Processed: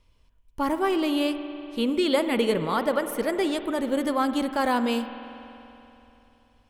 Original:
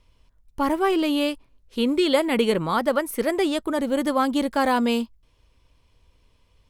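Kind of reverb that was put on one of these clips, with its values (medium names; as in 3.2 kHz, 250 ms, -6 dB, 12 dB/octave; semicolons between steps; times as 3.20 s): spring tank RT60 3.2 s, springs 48 ms, chirp 65 ms, DRR 9.5 dB; trim -3 dB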